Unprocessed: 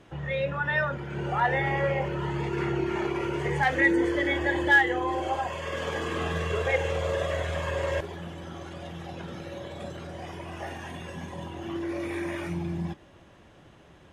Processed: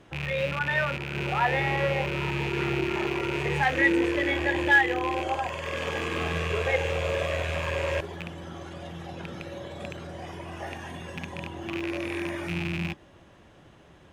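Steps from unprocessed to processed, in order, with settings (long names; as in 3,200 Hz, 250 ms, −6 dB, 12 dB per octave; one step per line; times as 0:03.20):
loose part that buzzes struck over −36 dBFS, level −22 dBFS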